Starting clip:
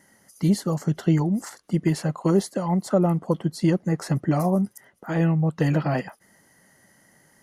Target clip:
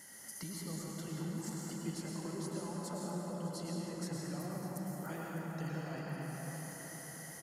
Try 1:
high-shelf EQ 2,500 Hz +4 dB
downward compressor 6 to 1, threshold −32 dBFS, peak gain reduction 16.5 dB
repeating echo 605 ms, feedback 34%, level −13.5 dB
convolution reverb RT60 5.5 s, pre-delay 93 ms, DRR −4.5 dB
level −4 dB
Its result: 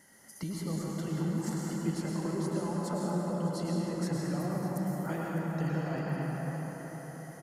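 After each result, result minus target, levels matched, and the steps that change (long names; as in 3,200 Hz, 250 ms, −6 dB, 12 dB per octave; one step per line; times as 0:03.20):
downward compressor: peak gain reduction −8.5 dB; 4,000 Hz band −5.5 dB
change: downward compressor 6 to 1, threshold −42 dBFS, peak gain reduction 25 dB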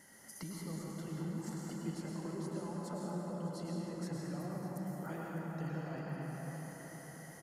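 4,000 Hz band −4.5 dB
change: high-shelf EQ 2,500 Hz +13 dB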